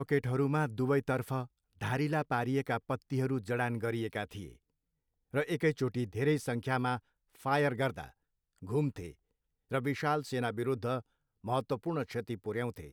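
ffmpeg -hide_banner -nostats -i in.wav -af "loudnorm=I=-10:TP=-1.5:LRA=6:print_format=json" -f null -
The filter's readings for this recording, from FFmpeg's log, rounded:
"input_i" : "-34.1",
"input_tp" : "-16.9",
"input_lra" : "2.7",
"input_thresh" : "-44.5",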